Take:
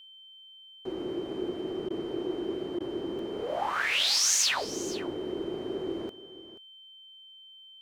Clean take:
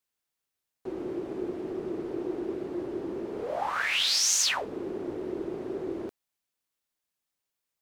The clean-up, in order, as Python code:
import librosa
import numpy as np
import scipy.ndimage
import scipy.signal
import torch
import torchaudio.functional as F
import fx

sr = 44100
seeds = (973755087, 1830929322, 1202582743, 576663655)

y = fx.notch(x, sr, hz=3100.0, q=30.0)
y = fx.fix_interpolate(y, sr, at_s=(3.19,), length_ms=1.9)
y = fx.fix_interpolate(y, sr, at_s=(1.89, 2.79), length_ms=12.0)
y = fx.fix_echo_inverse(y, sr, delay_ms=482, level_db=-15.5)